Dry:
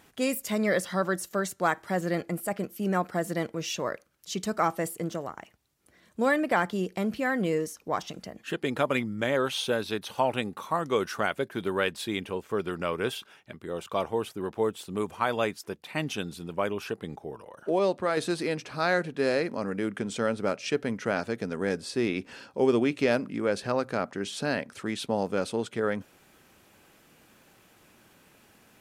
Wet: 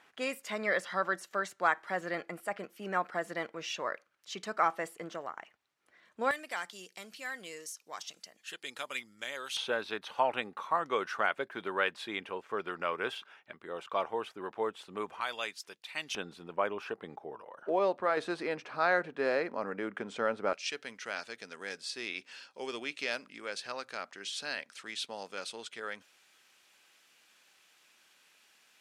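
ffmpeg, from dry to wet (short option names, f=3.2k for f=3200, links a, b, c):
-af "asetnsamples=n=441:p=0,asendcmd='6.31 bandpass f 6300;9.57 bandpass f 1400;15.21 bandpass f 4200;16.15 bandpass f 1100;20.53 bandpass f 4100',bandpass=f=1.6k:t=q:w=0.71:csg=0"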